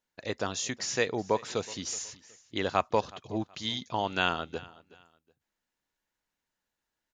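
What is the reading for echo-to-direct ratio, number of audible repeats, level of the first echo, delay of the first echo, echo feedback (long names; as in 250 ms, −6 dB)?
−20.5 dB, 2, −21.0 dB, 371 ms, 29%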